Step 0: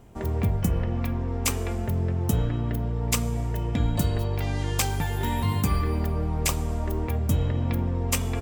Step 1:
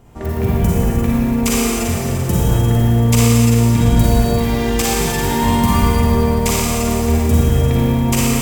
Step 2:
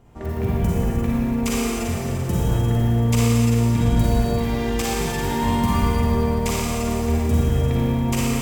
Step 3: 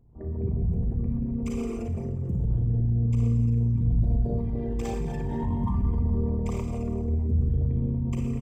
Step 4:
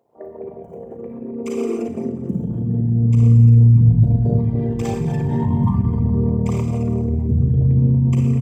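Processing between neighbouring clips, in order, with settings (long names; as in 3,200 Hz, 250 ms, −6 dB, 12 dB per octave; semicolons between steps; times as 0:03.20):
four-comb reverb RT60 2.9 s, DRR −7.5 dB; level +3 dB
high-shelf EQ 6,000 Hz −6 dB; level −5.5 dB
spectral envelope exaggerated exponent 2; double-tracking delay 36 ms −10.5 dB; level −6 dB
high-pass filter sweep 570 Hz → 120 Hz, 0:00.70–0:03.44; level +7 dB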